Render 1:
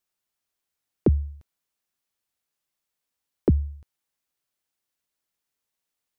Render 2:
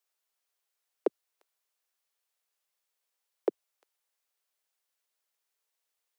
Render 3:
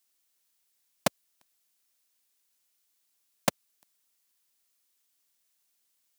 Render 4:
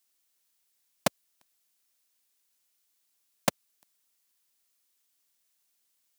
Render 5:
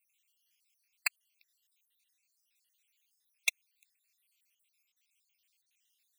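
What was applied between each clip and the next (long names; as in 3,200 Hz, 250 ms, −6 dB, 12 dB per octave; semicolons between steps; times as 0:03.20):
Butterworth high-pass 400 Hz
sub-harmonics by changed cycles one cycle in 2, inverted; high-shelf EQ 2,900 Hz +10.5 dB
no processing that can be heard
time-frequency cells dropped at random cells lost 64%; high-pass with resonance 2,500 Hz, resonance Q 3.2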